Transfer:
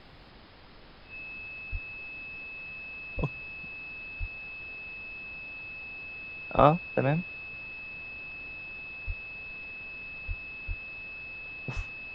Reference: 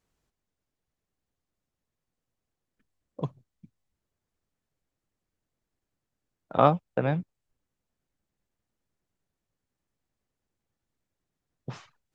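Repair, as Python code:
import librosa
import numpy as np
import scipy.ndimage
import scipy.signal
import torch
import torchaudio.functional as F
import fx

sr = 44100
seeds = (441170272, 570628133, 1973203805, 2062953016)

y = fx.notch(x, sr, hz=2600.0, q=30.0)
y = fx.fix_deplosive(y, sr, at_s=(1.71, 3.16, 4.19, 6.56, 9.06, 10.27, 10.67, 11.75))
y = fx.noise_reduce(y, sr, print_start_s=0.23, print_end_s=0.73, reduce_db=30.0)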